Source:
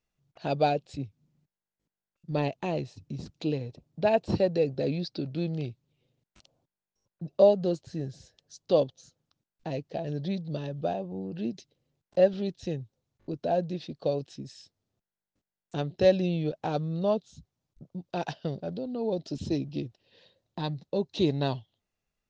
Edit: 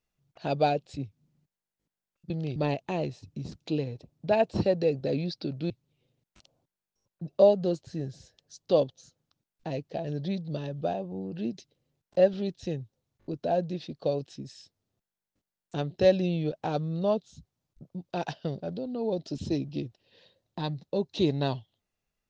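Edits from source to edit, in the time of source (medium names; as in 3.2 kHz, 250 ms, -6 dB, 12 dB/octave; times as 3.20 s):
5.44–5.70 s: move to 2.30 s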